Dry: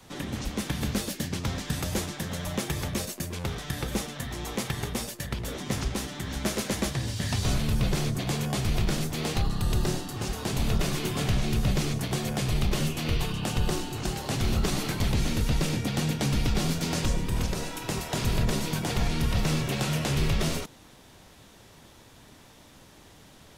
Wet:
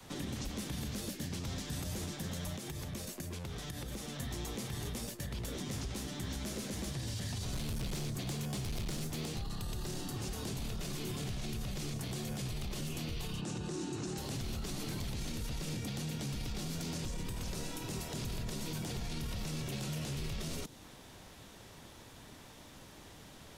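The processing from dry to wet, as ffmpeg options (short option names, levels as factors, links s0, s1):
-filter_complex "[0:a]asettb=1/sr,asplit=3[s0][s1][s2];[s0]atrim=end=2.564[s3];[s1]atrim=start=2.56:end=4.19,asetpts=PTS-STARTPTS,afade=t=in:d=0.004:c=qsin,afade=t=out:st=1.626:d=0.004:c=qsin,acompressor=threshold=0.0178:ratio=10:attack=3.2:release=140:knee=1:detection=peak[s4];[s2]atrim=start=4.186[s5];[s3][s4]acrossfade=d=0.004:c1=hsin:c2=qsin[s6];[s6][s5]acrossfade=d=0.004:c1=qsin:c2=hsin,asettb=1/sr,asplit=3[s7][s8][s9];[s7]atrim=end=7.534[s10];[s8]atrim=start=7.53:end=9.26,asetpts=PTS-STARTPTS,afade=t=in:d=0.004:c=qsin,afade=t=out:st=1.726:d=0.004:c=qsin,volume=16.8,asoftclip=hard,volume=0.0596[s11];[s9]atrim=start=9.256[s12];[s10][s11]acrossfade=d=0.004:c1=hsin:c2=qsin[s13];[s13][s12]acrossfade=d=0.004:c1=qsin:c2=hsin,asettb=1/sr,asplit=3[s14][s15][s16];[s14]atrim=end=13.414[s17];[s15]atrim=start=13.41:end=14.18,asetpts=PTS-STARTPTS,afade=t=in:d=0.004:c=qsin,afade=t=out:st=0.766:d=0.004:c=qsin,highpass=120,equalizer=f=170:t=q:w=4:g=4,equalizer=f=330:t=q:w=4:g=8,equalizer=f=690:t=q:w=4:g=-3,equalizer=f=2100:t=q:w=4:g=-4,equalizer=f=3100:t=q:w=4:g=-8,equalizer=f=4600:t=q:w=4:g=-6,lowpass=f=8300:w=0.5412,lowpass=f=8300:w=1.3066[s18];[s16]atrim=start=14.176[s19];[s17][s18]acrossfade=d=0.004:c1=hsin:c2=qsin[s20];[s20][s19]acrossfade=d=0.004:c1=qsin:c2=hsin,alimiter=level_in=1.19:limit=0.0631:level=0:latency=1:release=32,volume=0.841,acrossover=split=440|900|3300[s21][s22][s23][s24];[s21]acompressor=threshold=0.0158:ratio=4[s25];[s22]acompressor=threshold=0.002:ratio=4[s26];[s23]acompressor=threshold=0.00224:ratio=4[s27];[s24]acompressor=threshold=0.00708:ratio=4[s28];[s25][s26][s27][s28]amix=inputs=4:normalize=0,volume=0.891"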